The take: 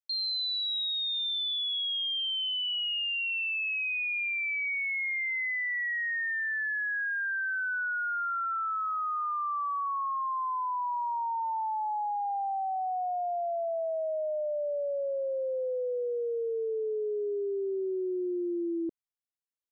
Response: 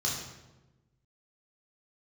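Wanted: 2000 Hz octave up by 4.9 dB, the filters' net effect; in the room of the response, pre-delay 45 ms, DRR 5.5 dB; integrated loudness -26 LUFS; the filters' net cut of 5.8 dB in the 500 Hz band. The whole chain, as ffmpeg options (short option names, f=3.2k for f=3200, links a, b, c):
-filter_complex "[0:a]equalizer=f=500:t=o:g=-8,equalizer=f=2k:t=o:g=6.5,asplit=2[a][b];[1:a]atrim=start_sample=2205,adelay=45[c];[b][c]afir=irnorm=-1:irlink=0,volume=-12dB[d];[a][d]amix=inputs=2:normalize=0"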